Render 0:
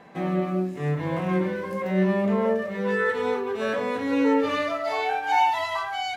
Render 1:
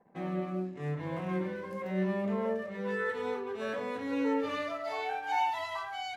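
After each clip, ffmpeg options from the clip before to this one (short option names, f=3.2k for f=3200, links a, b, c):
-af "anlmdn=0.0398,volume=-9dB"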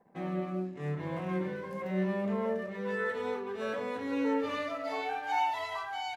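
-af "aecho=1:1:629:0.158"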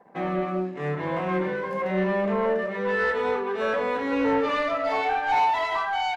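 -filter_complex "[0:a]asplit=2[a][b];[b]highpass=f=720:p=1,volume=15dB,asoftclip=type=tanh:threshold=-19dB[c];[a][c]amix=inputs=2:normalize=0,lowpass=f=1.8k:p=1,volume=-6dB,volume=5.5dB"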